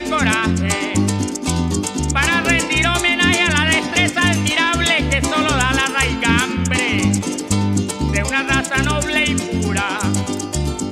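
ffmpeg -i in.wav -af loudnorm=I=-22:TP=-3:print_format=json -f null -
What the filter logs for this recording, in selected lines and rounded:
"input_i" : "-17.0",
"input_tp" : "-3.6",
"input_lra" : "3.6",
"input_thresh" : "-27.0",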